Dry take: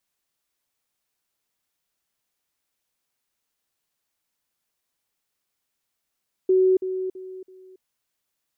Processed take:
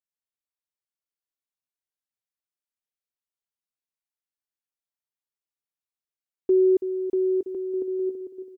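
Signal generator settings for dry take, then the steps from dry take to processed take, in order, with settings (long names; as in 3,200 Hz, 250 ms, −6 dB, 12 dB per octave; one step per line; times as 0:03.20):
level staircase 374 Hz −14.5 dBFS, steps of −10 dB, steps 4, 0.28 s 0.05 s
noise gate with hold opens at −37 dBFS
on a send: bouncing-ball delay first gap 640 ms, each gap 0.65×, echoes 5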